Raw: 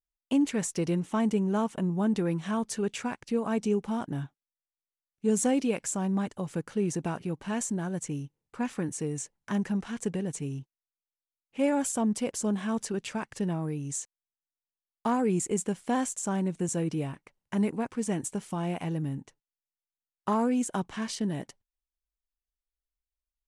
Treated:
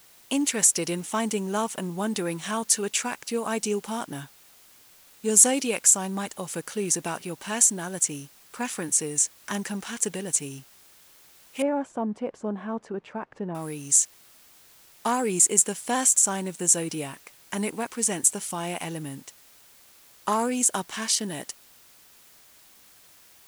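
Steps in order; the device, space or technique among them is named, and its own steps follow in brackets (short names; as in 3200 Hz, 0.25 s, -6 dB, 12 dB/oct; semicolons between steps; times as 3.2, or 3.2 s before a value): turntable without a phono preamp (RIAA curve recording; white noise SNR 27 dB); 11.62–13.55 LPF 1000 Hz 12 dB/oct; gain +4.5 dB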